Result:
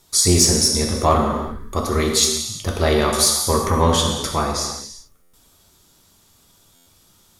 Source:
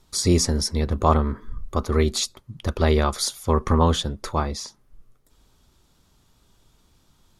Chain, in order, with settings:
low-shelf EQ 120 Hz −8 dB
reverb whose tail is shaped and stops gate 410 ms falling, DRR 0 dB
in parallel at −4 dB: soft clipping −14 dBFS, distortion −13 dB
on the sum: high-shelf EQ 6,200 Hz +11.5 dB
buffer that repeats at 0:05.22/0:06.75, samples 512, times 9
level −2 dB

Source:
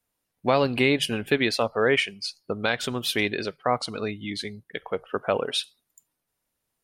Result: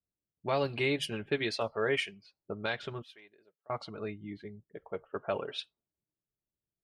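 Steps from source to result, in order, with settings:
0:03.02–0:03.70: first difference
low-pass that shuts in the quiet parts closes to 390 Hz, open at −18.5 dBFS
notch comb filter 250 Hz
level −7.5 dB

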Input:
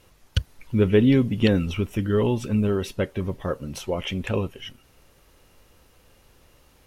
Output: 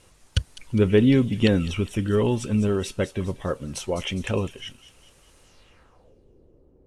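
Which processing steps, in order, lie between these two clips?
low-pass filter sweep 8,800 Hz → 400 Hz, 0:05.43–0:06.16
delay with a high-pass on its return 204 ms, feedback 50%, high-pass 3,400 Hz, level −10 dB

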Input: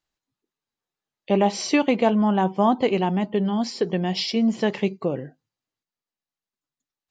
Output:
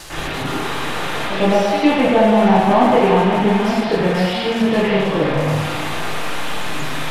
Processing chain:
linear delta modulator 64 kbit/s, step −22.5 dBFS
noise gate with hold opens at −26 dBFS
leveller curve on the samples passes 1
echo through a band-pass that steps 175 ms, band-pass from 690 Hz, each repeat 0.7 octaves, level −2 dB
convolution reverb RT60 0.85 s, pre-delay 99 ms, DRR −15 dB
level −11.5 dB

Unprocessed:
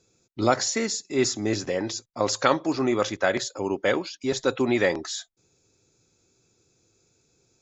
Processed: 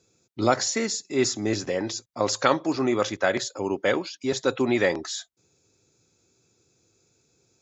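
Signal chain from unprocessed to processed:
high-pass filter 60 Hz

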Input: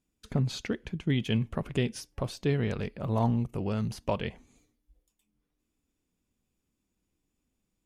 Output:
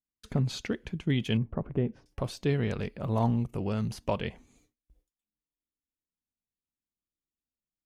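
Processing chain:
0:01.37–0:02.06: low-pass filter 1,000 Hz 12 dB per octave
noise gate with hold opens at −55 dBFS

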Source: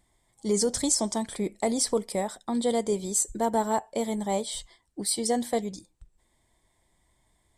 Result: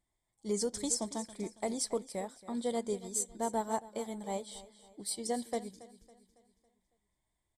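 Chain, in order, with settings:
on a send: repeating echo 277 ms, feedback 47%, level −12.5 dB
on the sum: expander for the loud parts 1.5 to 1, over −38 dBFS
level −7 dB

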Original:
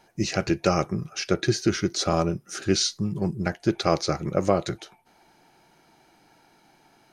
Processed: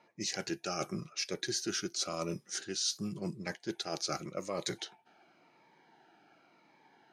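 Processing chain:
spectral tilt +2.5 dB per octave
low-pass that shuts in the quiet parts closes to 1,900 Hz, open at −23 dBFS
reversed playback
downward compressor 10 to 1, threshold −30 dBFS, peak gain reduction 15.5 dB
reversed playback
high-pass filter 140 Hz 12 dB per octave
harmonic generator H 3 −31 dB, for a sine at −18 dBFS
phaser whose notches keep moving one way falling 0.91 Hz

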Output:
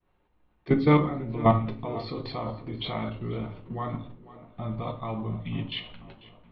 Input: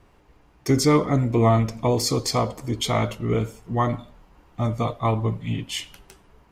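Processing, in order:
output level in coarse steps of 16 dB
tape delay 493 ms, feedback 65%, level −16 dB, low-pass 2,200 Hz
downward expander −57 dBFS
Chebyshev low-pass filter 4,100 Hz, order 6
rectangular room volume 250 cubic metres, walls furnished, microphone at 0.98 metres

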